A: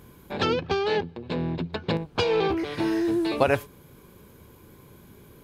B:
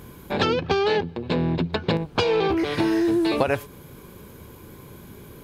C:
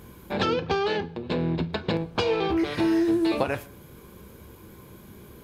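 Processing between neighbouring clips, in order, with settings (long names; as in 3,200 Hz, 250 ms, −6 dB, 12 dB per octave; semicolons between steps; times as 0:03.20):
downward compressor 6 to 1, threshold −25 dBFS, peak gain reduction 10 dB; level +7 dB
convolution reverb RT60 0.45 s, pre-delay 7 ms, DRR 9.5 dB; level −4 dB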